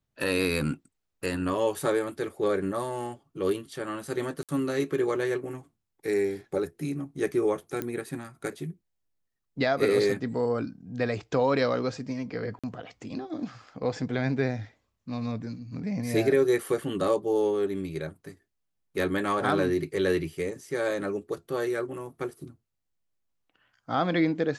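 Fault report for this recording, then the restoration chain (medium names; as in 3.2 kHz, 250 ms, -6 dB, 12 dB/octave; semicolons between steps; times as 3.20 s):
4.43–4.49 s: dropout 57 ms
7.82 s: pop -17 dBFS
12.59–12.64 s: dropout 46 ms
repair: de-click; interpolate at 4.43 s, 57 ms; interpolate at 12.59 s, 46 ms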